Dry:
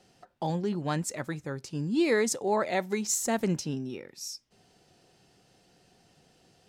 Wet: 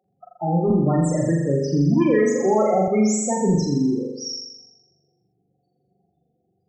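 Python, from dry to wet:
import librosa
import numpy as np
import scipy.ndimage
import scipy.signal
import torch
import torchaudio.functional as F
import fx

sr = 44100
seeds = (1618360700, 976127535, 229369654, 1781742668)

y = fx.cvsd(x, sr, bps=64000)
y = scipy.signal.sosfilt(scipy.signal.butter(2, 41.0, 'highpass', fs=sr, output='sos'), y)
y = fx.low_shelf(y, sr, hz=160.0, db=2.0)
y = fx.hum_notches(y, sr, base_hz=50, count=5)
y = fx.leveller(y, sr, passes=3)
y = fx.spec_topn(y, sr, count=8)
y = fx.room_flutter(y, sr, wall_m=7.2, rt60_s=0.97)
y = fx.band_squash(y, sr, depth_pct=70, at=(0.7, 2.88))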